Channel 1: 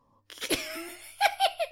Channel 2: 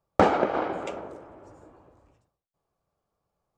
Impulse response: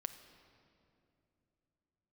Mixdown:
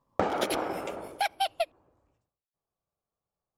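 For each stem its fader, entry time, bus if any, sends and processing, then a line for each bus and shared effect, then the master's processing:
+1.0 dB, 0.00 s, no send, transient shaper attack +10 dB, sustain -11 dB; peak limiter -16 dBFS, peak gain reduction 11 dB; upward expansion 1.5:1, over -42 dBFS
1.04 s -2 dB -> 1.37 s -10.5 dB, 0.00 s, no send, none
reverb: none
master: compression 3:1, threshold -25 dBFS, peak gain reduction 7.5 dB

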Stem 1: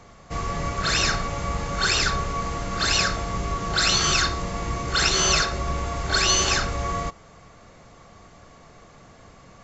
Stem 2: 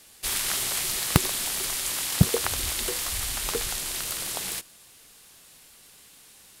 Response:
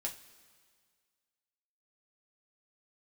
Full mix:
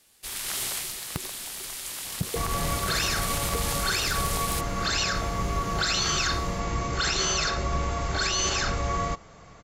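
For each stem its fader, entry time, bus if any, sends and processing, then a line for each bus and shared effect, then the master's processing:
-0.5 dB, 2.05 s, no send, none
-9.0 dB, 0.00 s, no send, level rider gain up to 10 dB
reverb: none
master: peak limiter -16.5 dBFS, peak gain reduction 8.5 dB

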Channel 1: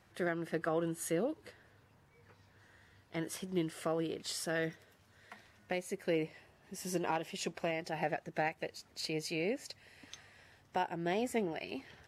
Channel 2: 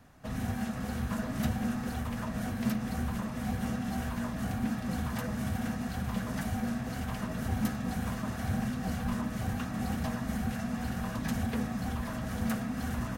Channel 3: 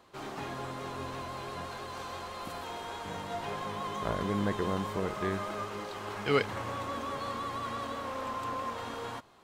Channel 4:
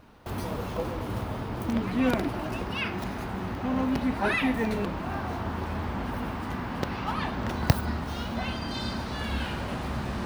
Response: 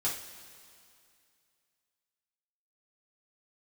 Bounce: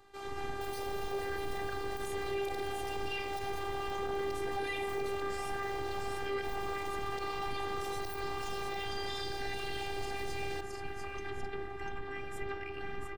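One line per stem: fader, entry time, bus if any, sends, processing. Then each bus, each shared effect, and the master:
-1.5 dB, 1.05 s, no send, echo send -5.5 dB, peaking EQ 2.6 kHz +9.5 dB 2.4 oct; compression 2:1, threshold -38 dBFS, peak gain reduction 8.5 dB; static phaser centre 1.6 kHz, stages 4
-2.0 dB, 0.00 s, no send, no echo send, inverse Chebyshev low-pass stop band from 8.5 kHz, stop band 50 dB
-1.0 dB, 0.00 s, no send, no echo send, none
+2.0 dB, 0.35 s, no send, echo send -16.5 dB, static phaser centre 330 Hz, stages 6; de-hum 46.47 Hz, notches 28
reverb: none
echo: delay 694 ms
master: robot voice 397 Hz; peak limiter -23.5 dBFS, peak gain reduction 19 dB

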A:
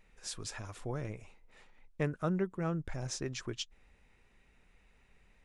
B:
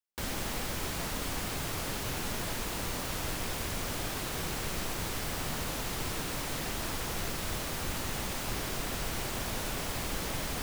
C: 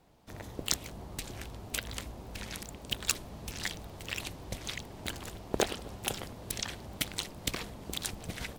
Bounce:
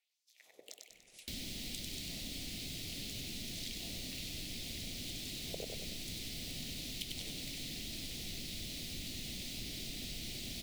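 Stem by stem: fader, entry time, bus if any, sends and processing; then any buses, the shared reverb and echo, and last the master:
-11.5 dB, 0.90 s, no send, no echo send, compression 1.5:1, threshold -54 dBFS, peak gain reduction 9.5 dB; spectrum-flattening compressor 10:1
-3.0 dB, 1.10 s, no send, no echo send, graphic EQ 250/500/1000/4000 Hz +6/-8/-7/+10 dB
-14.5 dB, 0.00 s, no send, echo send -4 dB, level rider; LFO high-pass sine 1.2 Hz 450–6100 Hz; square tremolo 0.59 Hz, depth 65%, duty 30%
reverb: none
echo: feedback delay 97 ms, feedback 48%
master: high-order bell 1.2 kHz -15 dB 1.2 oct; compression 2:1, threshold -46 dBFS, peak gain reduction 10.5 dB

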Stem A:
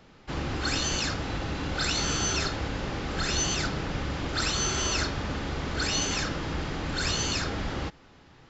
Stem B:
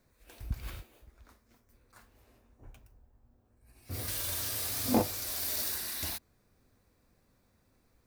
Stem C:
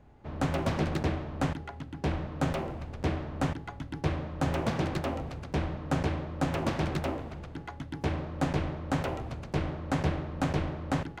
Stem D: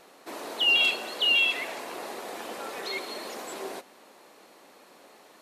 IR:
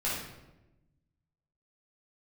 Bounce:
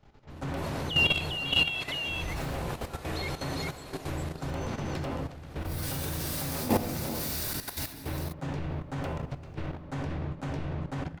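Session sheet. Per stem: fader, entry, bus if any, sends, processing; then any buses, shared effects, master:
-8.0 dB, 0.00 s, bus A, send -21 dB, no echo send, compression 6:1, threshold -37 dBFS, peak gain reduction 13 dB
0.0 dB, 1.75 s, no bus, send -6 dB, echo send -5 dB, treble shelf 3.1 kHz -2.5 dB
-1.5 dB, 0.00 s, bus A, send -10.5 dB, echo send -22.5 dB, attacks held to a fixed rise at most 270 dB/s
-1.0 dB, 0.30 s, no bus, no send, echo send -3.5 dB, none
bus A: 0.0 dB, peak limiter -26.5 dBFS, peak gain reduction 9.5 dB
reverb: on, RT60 1.0 s, pre-delay 7 ms
echo: delay 401 ms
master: level held to a coarse grid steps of 11 dB

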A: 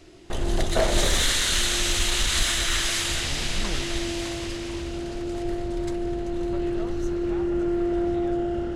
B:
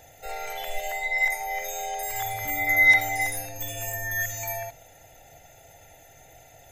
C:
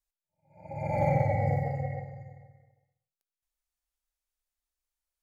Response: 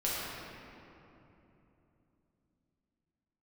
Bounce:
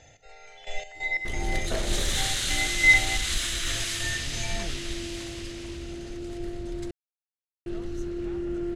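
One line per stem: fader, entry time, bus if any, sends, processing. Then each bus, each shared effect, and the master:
-4.5 dB, 0.95 s, muted 6.91–7.66 s, no send, none
+1.0 dB, 0.00 s, no send, inverse Chebyshev low-pass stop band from 11 kHz, stop band 40 dB; trance gate "x...x.x.x" 90 bpm -12 dB
-18.0 dB, 1.05 s, no send, none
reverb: none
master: peaking EQ 810 Hz -7.5 dB 1.4 oct

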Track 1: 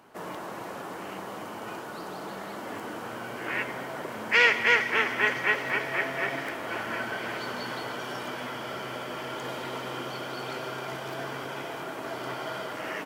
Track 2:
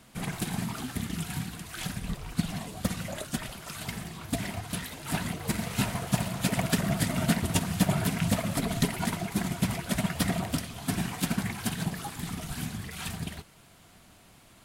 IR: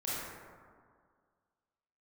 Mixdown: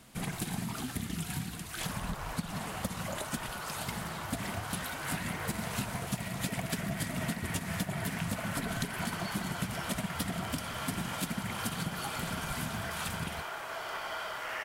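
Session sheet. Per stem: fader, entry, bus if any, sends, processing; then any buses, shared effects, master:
-5.5 dB, 1.65 s, send -10 dB, high-pass 810 Hz 12 dB/octave; compressor with a negative ratio -35 dBFS
-1.0 dB, 0.00 s, no send, peaking EQ 12 kHz +2 dB 1.5 oct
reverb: on, RT60 1.9 s, pre-delay 22 ms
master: compression 6:1, threshold -31 dBFS, peak gain reduction 12 dB

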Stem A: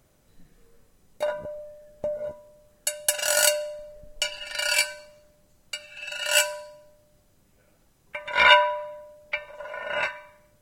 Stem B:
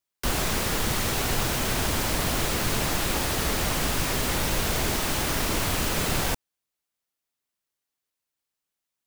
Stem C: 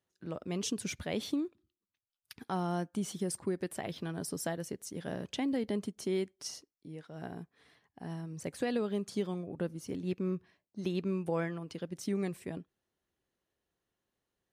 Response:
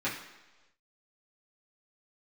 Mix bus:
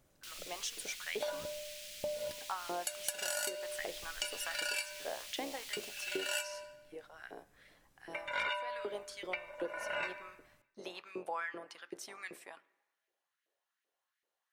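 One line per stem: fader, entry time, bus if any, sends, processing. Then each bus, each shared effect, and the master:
-8.0 dB, 0.00 s, send -18 dB, none
-15.5 dB, 0.00 s, no send, inverse Chebyshev high-pass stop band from 540 Hz, stop band 70 dB; treble shelf 8.1 kHz -6 dB
-2.5 dB, 0.00 s, send -20.5 dB, octave divider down 2 oct, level +3 dB; bass shelf 340 Hz -8.5 dB; LFO high-pass saw up 2.6 Hz 380–2200 Hz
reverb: on, RT60 1.2 s, pre-delay 3 ms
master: compression 12:1, threshold -33 dBFS, peak gain reduction 16 dB

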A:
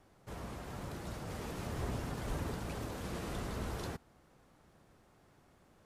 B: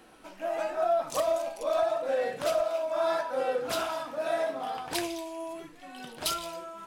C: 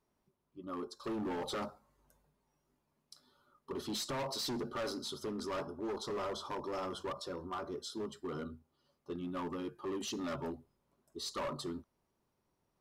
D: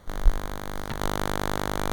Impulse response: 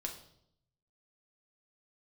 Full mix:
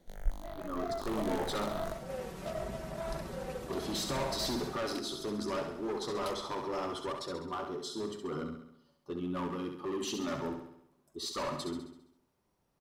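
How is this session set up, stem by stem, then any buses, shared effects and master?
-5.0 dB, 0.80 s, no send, no echo send, comb 5.3 ms, depth 81%; upward compressor, threshold -42 dBFS
-10.5 dB, 0.00 s, no send, no echo send, local Wiener filter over 41 samples; treble shelf 7.9 kHz -8.5 dB
+2.0 dB, 0.00 s, no send, echo send -6.5 dB, none
-12.5 dB, 0.00 s, no send, echo send -14.5 dB, stepped phaser 6.5 Hz 310–2800 Hz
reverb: none
echo: feedback delay 67 ms, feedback 54%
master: none

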